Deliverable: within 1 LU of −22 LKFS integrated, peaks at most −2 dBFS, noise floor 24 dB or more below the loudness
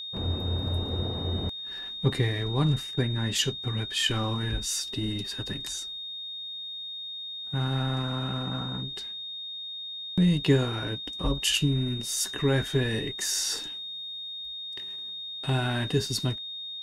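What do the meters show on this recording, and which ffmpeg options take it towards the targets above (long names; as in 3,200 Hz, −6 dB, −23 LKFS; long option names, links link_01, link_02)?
interfering tone 3,700 Hz; level of the tone −35 dBFS; integrated loudness −29.0 LKFS; sample peak −10.5 dBFS; target loudness −22.0 LKFS
→ -af "bandreject=frequency=3700:width=30"
-af "volume=7dB"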